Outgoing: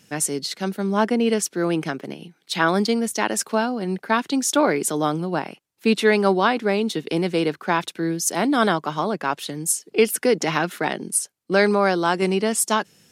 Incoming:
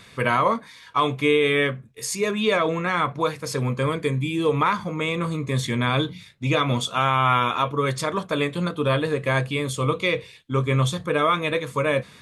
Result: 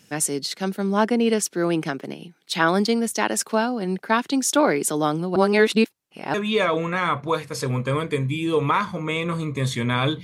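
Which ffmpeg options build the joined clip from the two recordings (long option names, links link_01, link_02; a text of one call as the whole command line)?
ffmpeg -i cue0.wav -i cue1.wav -filter_complex "[0:a]apad=whole_dur=10.23,atrim=end=10.23,asplit=2[link_01][link_02];[link_01]atrim=end=5.362[link_03];[link_02]atrim=start=5.358:end=6.342,asetpts=PTS-STARTPTS,areverse[link_04];[1:a]atrim=start=2.258:end=6.15[link_05];[link_03][link_04]acrossfade=duration=0.004:curve1=hsin:curve2=hsin[link_06];[link_06][link_05]acrossfade=duration=0.004:curve1=hsin:curve2=hsin" out.wav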